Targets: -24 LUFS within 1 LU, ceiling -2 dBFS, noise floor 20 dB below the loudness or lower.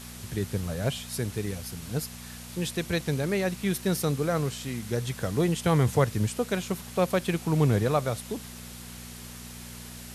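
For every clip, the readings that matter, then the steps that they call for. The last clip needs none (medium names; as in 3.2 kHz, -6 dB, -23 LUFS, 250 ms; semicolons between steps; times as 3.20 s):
hum 60 Hz; highest harmonic 240 Hz; hum level -46 dBFS; noise floor -43 dBFS; noise floor target -49 dBFS; loudness -28.5 LUFS; peak level -10.5 dBFS; loudness target -24.0 LUFS
-> de-hum 60 Hz, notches 4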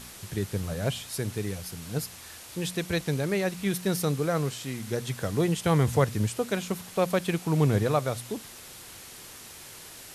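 hum not found; noise floor -46 dBFS; noise floor target -49 dBFS
-> noise reduction 6 dB, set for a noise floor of -46 dBFS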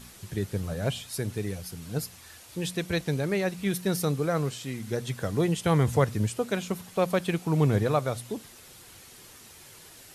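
noise floor -50 dBFS; loudness -28.5 LUFS; peak level -10.0 dBFS; loudness target -24.0 LUFS
-> trim +4.5 dB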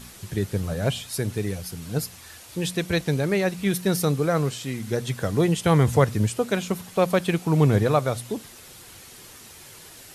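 loudness -24.0 LUFS; peak level -5.5 dBFS; noise floor -46 dBFS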